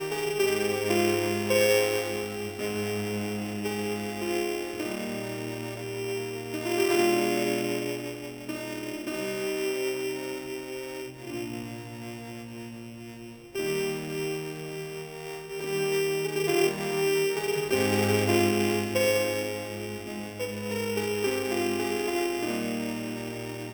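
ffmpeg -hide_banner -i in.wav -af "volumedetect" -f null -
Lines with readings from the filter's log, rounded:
mean_volume: -29.1 dB
max_volume: -12.8 dB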